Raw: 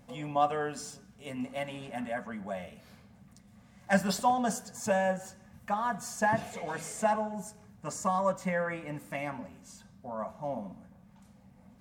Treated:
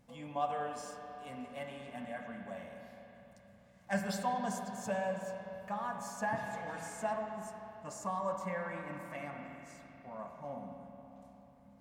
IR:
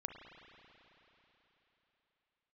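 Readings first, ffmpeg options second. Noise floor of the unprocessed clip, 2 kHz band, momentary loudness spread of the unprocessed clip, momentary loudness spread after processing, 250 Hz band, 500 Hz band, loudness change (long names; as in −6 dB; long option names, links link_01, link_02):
−58 dBFS, −7.0 dB, 18 LU, 17 LU, −7.0 dB, −6.5 dB, −7.5 dB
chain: -filter_complex "[1:a]atrim=start_sample=2205,asetrate=48510,aresample=44100[link_01];[0:a][link_01]afir=irnorm=-1:irlink=0,volume=-4dB"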